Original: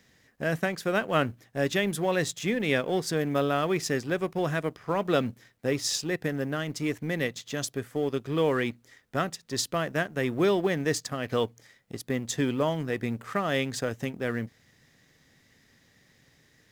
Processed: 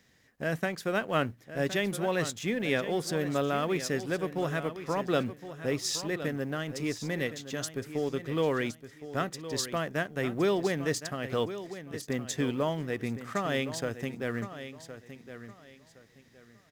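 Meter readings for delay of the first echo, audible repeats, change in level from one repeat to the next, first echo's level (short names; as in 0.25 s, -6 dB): 1.065 s, 2, -12.0 dB, -12.0 dB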